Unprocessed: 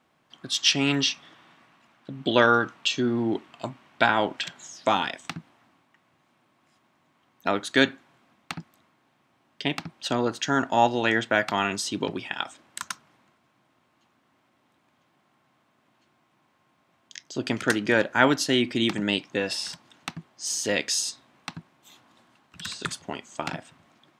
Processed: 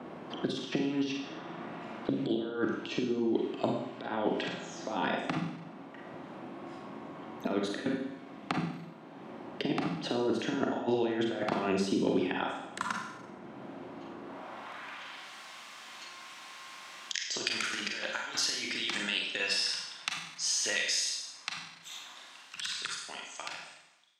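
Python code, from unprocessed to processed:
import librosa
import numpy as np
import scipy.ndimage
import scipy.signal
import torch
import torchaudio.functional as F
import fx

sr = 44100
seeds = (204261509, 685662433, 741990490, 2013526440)

y = fx.fade_out_tail(x, sr, length_s=6.69)
y = fx.over_compress(y, sr, threshold_db=-29.0, ratio=-0.5)
y = fx.filter_sweep_bandpass(y, sr, from_hz=360.0, to_hz=5500.0, start_s=14.19, end_s=15.3, q=1.0)
y = fx.rev_schroeder(y, sr, rt60_s=0.65, comb_ms=32, drr_db=0.0)
y = fx.band_squash(y, sr, depth_pct=70)
y = y * librosa.db_to_amplitude(3.5)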